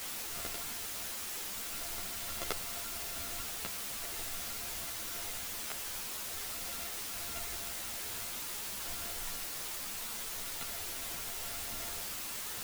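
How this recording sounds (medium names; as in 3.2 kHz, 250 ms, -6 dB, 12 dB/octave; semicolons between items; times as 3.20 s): a buzz of ramps at a fixed pitch in blocks of 64 samples; random-step tremolo, depth 100%; a quantiser's noise floor 6-bit, dither triangular; a shimmering, thickened sound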